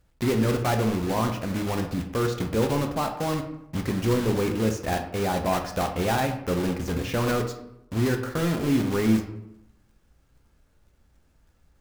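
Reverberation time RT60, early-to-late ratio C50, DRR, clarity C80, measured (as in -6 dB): 0.80 s, 8.5 dB, 4.0 dB, 11.5 dB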